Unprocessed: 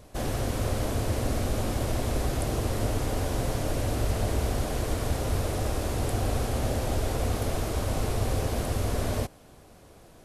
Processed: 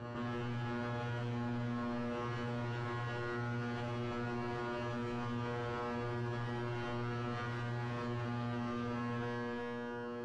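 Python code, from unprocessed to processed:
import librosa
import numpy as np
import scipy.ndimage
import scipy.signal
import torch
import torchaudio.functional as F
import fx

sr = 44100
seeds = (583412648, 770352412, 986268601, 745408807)

p1 = fx.lower_of_two(x, sr, delay_ms=0.68)
p2 = scipy.signal.sosfilt(scipy.signal.butter(2, 70.0, 'highpass', fs=sr, output='sos'), p1)
p3 = fx.low_shelf(p2, sr, hz=190.0, db=-10.0)
p4 = 10.0 ** (-36.0 / 20.0) * np.tanh(p3 / 10.0 ** (-36.0 / 20.0))
p5 = fx.comb_fb(p4, sr, f0_hz=120.0, decay_s=1.7, harmonics='all', damping=0.0, mix_pct=100)
p6 = (np.mod(10.0 ** (55.0 / 20.0) * p5 + 1.0, 2.0) - 1.0) / 10.0 ** (55.0 / 20.0)
p7 = p5 + F.gain(torch.from_numpy(p6), -1.0).numpy()
p8 = fx.spacing_loss(p7, sr, db_at_10k=42)
p9 = fx.doubler(p8, sr, ms=37.0, db=-11.0)
p10 = p9 + 10.0 ** (-7.5 / 20.0) * np.pad(p9, (int(363 * sr / 1000.0), 0))[:len(p9)]
p11 = fx.env_flatten(p10, sr, amount_pct=70)
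y = F.gain(torch.from_numpy(p11), 17.0).numpy()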